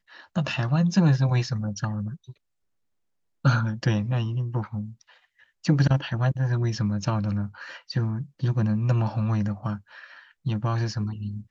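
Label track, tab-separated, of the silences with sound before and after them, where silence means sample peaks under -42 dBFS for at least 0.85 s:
2.320000	3.450000	silence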